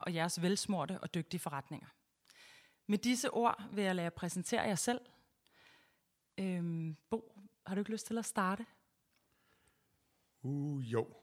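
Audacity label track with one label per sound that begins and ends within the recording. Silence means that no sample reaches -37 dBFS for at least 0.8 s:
2.890000	4.970000	sound
6.380000	8.610000	sound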